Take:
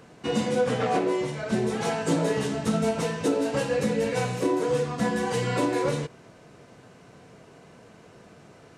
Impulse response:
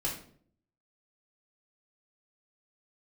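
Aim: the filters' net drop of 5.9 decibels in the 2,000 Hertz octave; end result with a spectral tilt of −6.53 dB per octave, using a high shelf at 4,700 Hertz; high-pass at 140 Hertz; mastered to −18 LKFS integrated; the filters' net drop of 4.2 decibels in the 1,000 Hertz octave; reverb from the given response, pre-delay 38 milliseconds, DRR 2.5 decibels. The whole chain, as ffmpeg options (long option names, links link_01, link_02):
-filter_complex "[0:a]highpass=140,equalizer=frequency=1000:width_type=o:gain=-4.5,equalizer=frequency=2000:width_type=o:gain=-5,highshelf=frequency=4700:gain=-6,asplit=2[link_01][link_02];[1:a]atrim=start_sample=2205,adelay=38[link_03];[link_02][link_03]afir=irnorm=-1:irlink=0,volume=-7dB[link_04];[link_01][link_04]amix=inputs=2:normalize=0,volume=6.5dB"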